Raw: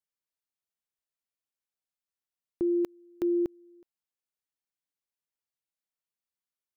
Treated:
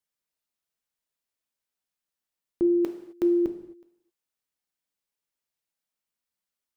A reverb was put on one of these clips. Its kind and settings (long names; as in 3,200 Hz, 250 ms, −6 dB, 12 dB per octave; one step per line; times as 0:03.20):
reverb whose tail is shaped and stops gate 290 ms falling, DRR 6 dB
level +3.5 dB